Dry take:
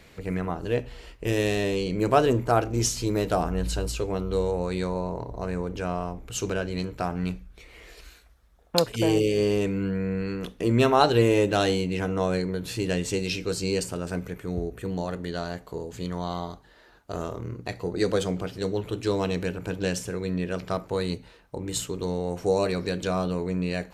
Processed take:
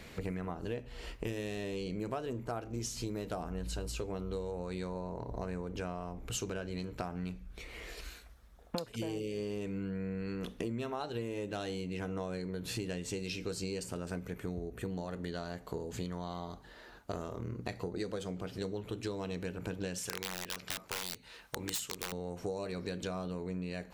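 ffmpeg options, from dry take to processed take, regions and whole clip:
ffmpeg -i in.wav -filter_complex "[0:a]asettb=1/sr,asplit=3[link_01][link_02][link_03];[link_01]atrim=end=19.984[link_04];[link_02]atrim=start=19.98:end=22.12,asetpts=PTS-STARTPTS,afade=type=in:duration=0.004:curve=qsin,afade=type=out:start_time=2.136:duration=0.004:curve=qsin,aeval=exprs='(mod(11.9*val(0)+1,2)-1)/11.9':channel_layout=same,tiltshelf=frequency=870:gain=-7[link_05];[link_03]atrim=start=22.116[link_06];[link_04][link_05]acrossfade=duration=0.004:curve1=hsin:curve2=qsin[link_07];[link_07][link_06]acrossfade=duration=0.004:curve1=qsin:curve2=hsin,equalizer=frequency=220:width_type=o:width=0.2:gain=6,acompressor=threshold=-36dB:ratio=12,volume=1.5dB" out.wav

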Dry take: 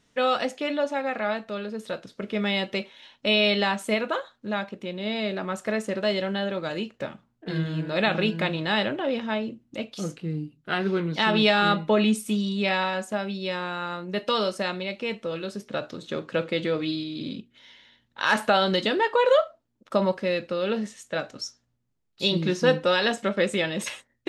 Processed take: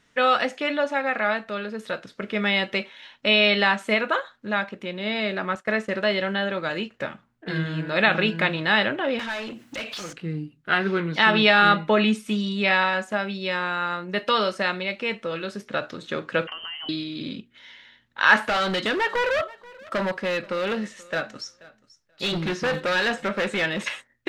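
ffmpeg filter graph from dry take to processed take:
ffmpeg -i in.wav -filter_complex "[0:a]asettb=1/sr,asplit=3[link_01][link_02][link_03];[link_01]atrim=end=5.554[link_04];[link_02]atrim=start=5.55:end=6.91,asetpts=PTS-STARTPTS,afade=type=in:duration=0.004:curve=qsin,afade=type=out:start_time=1.356:duration=0.004:curve=qsin,agate=range=-33dB:threshold=-36dB:ratio=3:release=100:detection=peak,acrossover=split=5400[link_05][link_06];[link_06]acompressor=threshold=-55dB:ratio=4:attack=1:release=60[link_07];[link_05][link_07]amix=inputs=2:normalize=0[link_08];[link_03]atrim=start=6.906[link_09];[link_04][link_08]acrossfade=duration=0.004:curve1=hsin:curve2=qsin[link_10];[link_10][link_09]acrossfade=duration=0.004:curve1=qsin:curve2=hsin,asettb=1/sr,asplit=3[link_11][link_12][link_13];[link_11]atrim=end=9.194[link_14];[link_12]atrim=start=9.19:end=10.13,asetpts=PTS-STARTPTS,afade=type=in:duration=0.004:curve=qsin,afade=type=out:start_time=0.936:duration=0.004:curve=qsin,highshelf=frequency=4700:gain=10.5,acompressor=threshold=-46dB:ratio=3:attack=3.2:release=140:knee=1:detection=peak,asplit=2[link_15][link_16];[link_16]highpass=frequency=720:poles=1,volume=28dB,asoftclip=type=tanh:threshold=-26dB[link_17];[link_15][link_17]amix=inputs=2:normalize=0,lowpass=frequency=6400:poles=1,volume=-6dB[link_18];[link_13]atrim=start=10.126[link_19];[link_14][link_18]acrossfade=duration=0.004:curve1=hsin:curve2=qsin[link_20];[link_20][link_19]acrossfade=duration=0.004:curve1=qsin:curve2=hsin,asettb=1/sr,asplit=3[link_21][link_22][link_23];[link_21]atrim=end=16.474[link_24];[link_22]atrim=start=16.47:end=16.89,asetpts=PTS-STARTPTS,afade=type=in:duration=0.004:curve=qsin,afade=type=out:start_time=0.416:duration=0.004:curve=qsin,aemphasis=mode=production:type=75kf,lowpass=frequency=2800:width_type=q:width=0.5098,lowpass=frequency=2800:width_type=q:width=0.6013,lowpass=frequency=2800:width_type=q:width=0.9,lowpass=frequency=2800:width_type=q:width=2.563,afreqshift=-3300,acompressor=threshold=-36dB:ratio=10:attack=3.2:release=140:knee=1:detection=peak[link_25];[link_23]atrim=start=16.886[link_26];[link_24][link_25]acrossfade=duration=0.004:curve1=hsin:curve2=qsin[link_27];[link_27][link_26]acrossfade=duration=0.004:curve1=qsin:curve2=hsin,asettb=1/sr,asplit=3[link_28][link_29][link_30];[link_28]atrim=end=18.384[link_31];[link_29]atrim=start=18.38:end=23.84,asetpts=PTS-STARTPTS,afade=type=in:duration=0.004:curve=qsin,afade=type=out:start_time=5.456:duration=0.004:curve=qsin,asoftclip=type=hard:threshold=-23.5dB,aecho=1:1:482|964:0.0794|0.0119,atrim=end_sample=240786[link_32];[link_30]atrim=start=23.836[link_33];[link_31][link_32]acrossfade=duration=0.004:curve1=hsin:curve2=qsin[link_34];[link_34][link_33]acrossfade=duration=0.004:curve1=qsin:curve2=hsin,acrossover=split=6000[link_35][link_36];[link_36]acompressor=threshold=-50dB:ratio=4:attack=1:release=60[link_37];[link_35][link_37]amix=inputs=2:normalize=0,equalizer=frequency=1700:width_type=o:width=1.5:gain=8" out.wav

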